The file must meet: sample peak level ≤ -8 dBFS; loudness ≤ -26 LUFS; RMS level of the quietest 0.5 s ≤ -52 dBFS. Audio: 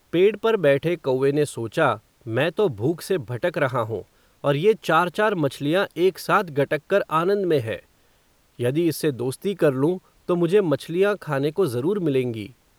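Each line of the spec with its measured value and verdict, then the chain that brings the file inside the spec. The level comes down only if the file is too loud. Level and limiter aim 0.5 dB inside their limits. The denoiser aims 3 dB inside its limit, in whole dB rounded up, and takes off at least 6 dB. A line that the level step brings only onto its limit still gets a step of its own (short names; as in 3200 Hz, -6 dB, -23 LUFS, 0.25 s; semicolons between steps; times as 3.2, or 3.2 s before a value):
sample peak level -6.5 dBFS: fail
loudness -22.5 LUFS: fail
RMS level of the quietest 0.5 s -60 dBFS: OK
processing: gain -4 dB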